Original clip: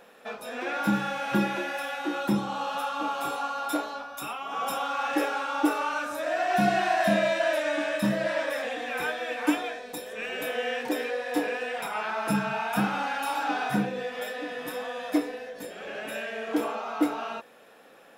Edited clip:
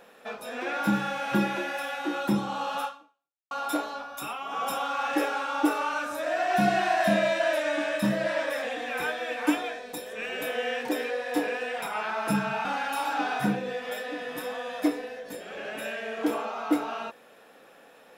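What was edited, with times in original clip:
0:02.85–0:03.51: fade out exponential
0:12.65–0:12.95: remove

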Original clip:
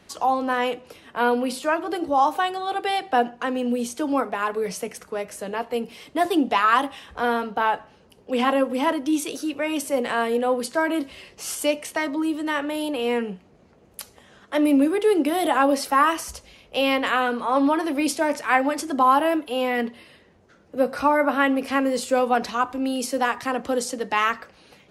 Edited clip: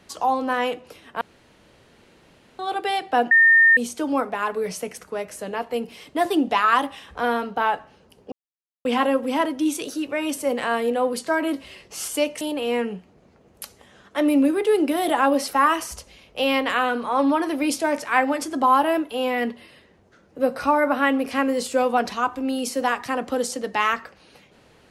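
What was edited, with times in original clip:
0:01.21–0:02.59: fill with room tone
0:03.31–0:03.77: beep over 1,820 Hz −10.5 dBFS
0:08.32: splice in silence 0.53 s
0:11.88–0:12.78: remove

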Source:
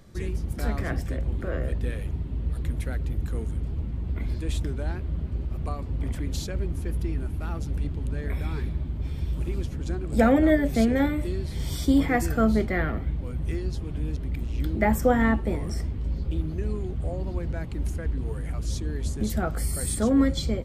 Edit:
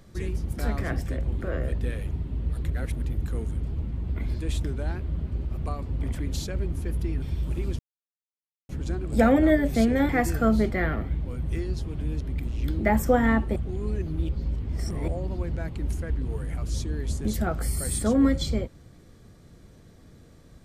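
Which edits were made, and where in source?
0:02.70–0:03.02: reverse
0:07.22–0:09.12: remove
0:09.69: splice in silence 0.90 s
0:11.09–0:12.05: remove
0:15.52–0:17.04: reverse

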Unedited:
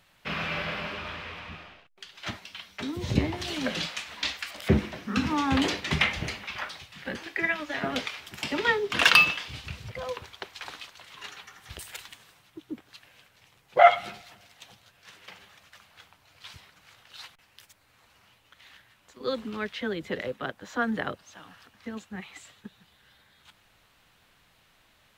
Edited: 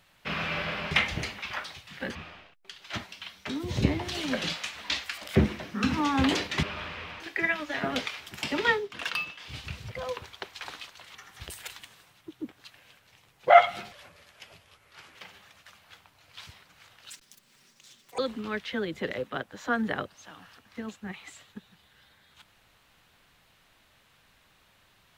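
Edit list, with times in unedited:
0:00.91–0:01.48: swap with 0:05.96–0:07.20
0:08.73–0:09.55: duck −14 dB, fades 0.18 s
0:11.15–0:11.44: remove
0:14.21–0:15.22: play speed 82%
0:17.17–0:19.27: play speed 194%

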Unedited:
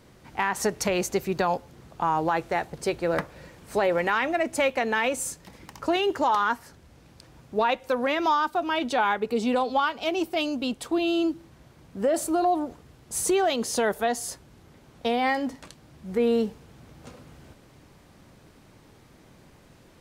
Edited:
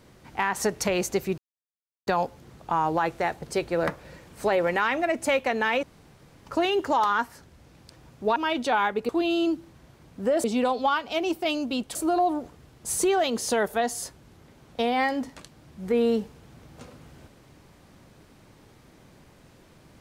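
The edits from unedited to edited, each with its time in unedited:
0:01.38: splice in silence 0.69 s
0:05.14–0:05.77: fill with room tone
0:07.67–0:08.62: remove
0:10.86–0:12.21: move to 0:09.35

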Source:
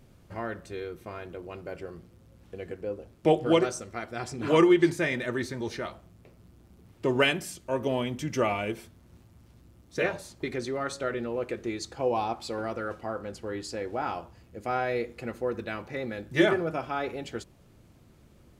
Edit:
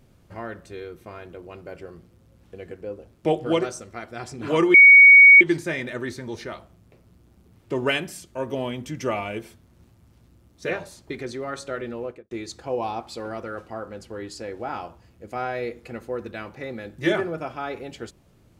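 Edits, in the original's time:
0:04.74: insert tone 2,240 Hz −6 dBFS 0.67 s
0:11.32–0:11.64: fade out and dull

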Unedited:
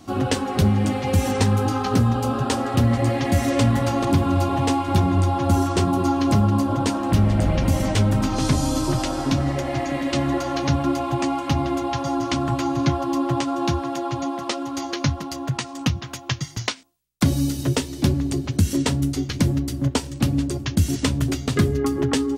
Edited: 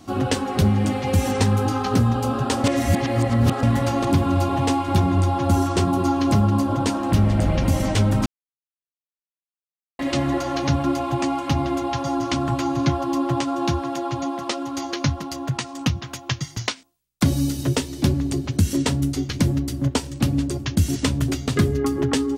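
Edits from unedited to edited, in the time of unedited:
0:02.64–0:03.63: reverse
0:08.26–0:09.99: silence

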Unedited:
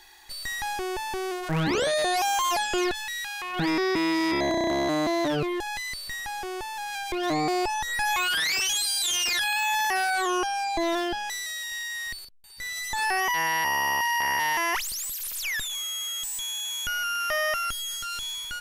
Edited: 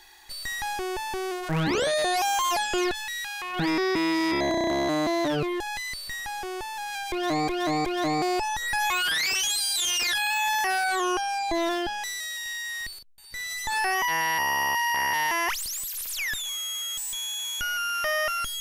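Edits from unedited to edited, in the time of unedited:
0:07.11–0:07.48: repeat, 3 plays

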